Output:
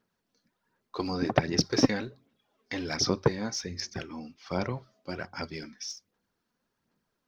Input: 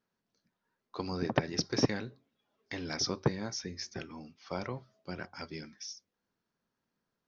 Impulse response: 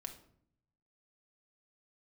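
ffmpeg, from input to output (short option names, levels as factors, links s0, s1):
-af "aphaser=in_gain=1:out_gain=1:delay=4.1:decay=0.43:speed=1.3:type=sinusoidal,volume=1.58"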